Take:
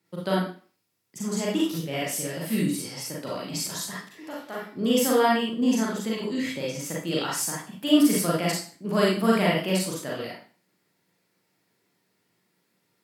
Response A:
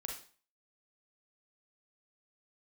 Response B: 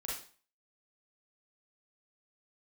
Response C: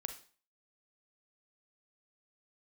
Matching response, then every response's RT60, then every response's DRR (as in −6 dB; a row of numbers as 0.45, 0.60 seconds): B; 0.40, 0.40, 0.40 seconds; 0.5, −5.5, 7.0 decibels